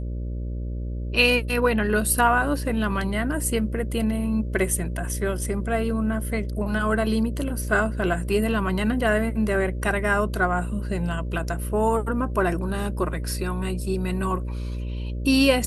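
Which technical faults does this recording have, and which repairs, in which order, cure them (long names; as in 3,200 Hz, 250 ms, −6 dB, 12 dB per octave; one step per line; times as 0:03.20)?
mains buzz 60 Hz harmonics 10 −29 dBFS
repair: hum removal 60 Hz, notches 10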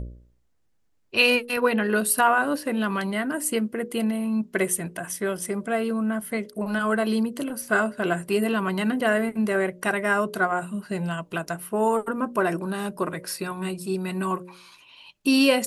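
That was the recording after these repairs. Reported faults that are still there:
none of them is left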